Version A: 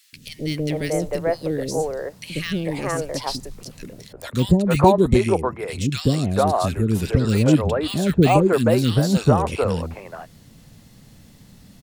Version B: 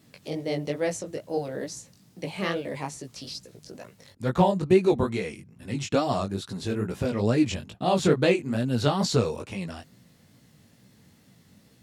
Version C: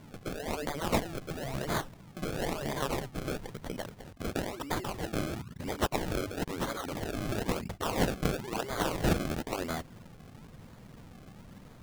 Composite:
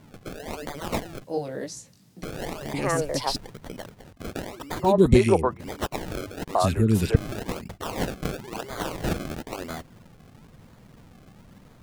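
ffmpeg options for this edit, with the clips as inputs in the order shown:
-filter_complex "[0:a]asplit=3[s0][s1][s2];[2:a]asplit=5[s3][s4][s5][s6][s7];[s3]atrim=end=1.242[s8];[1:a]atrim=start=1.238:end=2.232[s9];[s4]atrim=start=2.228:end=2.742[s10];[s0]atrim=start=2.738:end=3.362[s11];[s5]atrim=start=3.358:end=4.97[s12];[s1]atrim=start=4.81:end=5.62[s13];[s6]atrim=start=5.46:end=6.552[s14];[s2]atrim=start=6.548:end=7.162[s15];[s7]atrim=start=7.158[s16];[s8][s9]acrossfade=d=0.004:c1=hsin:c2=hsin[s17];[s17][s10]acrossfade=d=0.004:c1=hsin:c2=hsin[s18];[s18][s11]acrossfade=d=0.004:c1=hsin:c2=hsin[s19];[s19][s12]acrossfade=d=0.004:c1=hsin:c2=hsin[s20];[s20][s13]acrossfade=d=0.16:c1=tri:c2=tri[s21];[s21][s14]acrossfade=d=0.16:c1=tri:c2=tri[s22];[s22][s15]acrossfade=d=0.004:c1=hsin:c2=hsin[s23];[s23][s16]acrossfade=d=0.004:c1=hsin:c2=hsin"

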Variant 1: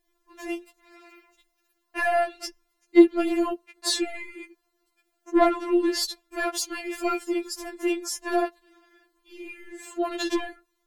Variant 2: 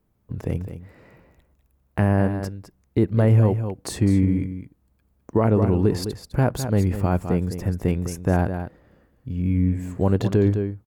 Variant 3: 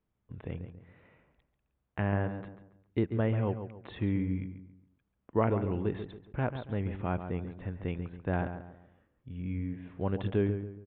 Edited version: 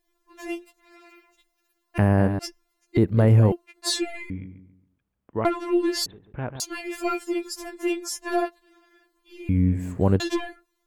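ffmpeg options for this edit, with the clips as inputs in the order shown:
-filter_complex "[1:a]asplit=3[s0][s1][s2];[2:a]asplit=2[s3][s4];[0:a]asplit=6[s5][s6][s7][s8][s9][s10];[s5]atrim=end=1.982[s11];[s0]atrim=start=1.978:end=2.392[s12];[s6]atrim=start=2.388:end=2.972[s13];[s1]atrim=start=2.968:end=3.522[s14];[s7]atrim=start=3.518:end=4.302[s15];[s3]atrim=start=4.298:end=5.452[s16];[s8]atrim=start=5.448:end=6.062[s17];[s4]atrim=start=6.058:end=6.602[s18];[s9]atrim=start=6.598:end=9.492[s19];[s2]atrim=start=9.488:end=10.202[s20];[s10]atrim=start=10.198[s21];[s11][s12]acrossfade=d=0.004:c1=hsin:c2=hsin[s22];[s22][s13]acrossfade=d=0.004:c1=hsin:c2=hsin[s23];[s23][s14]acrossfade=d=0.004:c1=hsin:c2=hsin[s24];[s24][s15]acrossfade=d=0.004:c1=hsin:c2=hsin[s25];[s25][s16]acrossfade=d=0.004:c1=hsin:c2=hsin[s26];[s26][s17]acrossfade=d=0.004:c1=hsin:c2=hsin[s27];[s27][s18]acrossfade=d=0.004:c1=hsin:c2=hsin[s28];[s28][s19]acrossfade=d=0.004:c1=hsin:c2=hsin[s29];[s29][s20]acrossfade=d=0.004:c1=hsin:c2=hsin[s30];[s30][s21]acrossfade=d=0.004:c1=hsin:c2=hsin"

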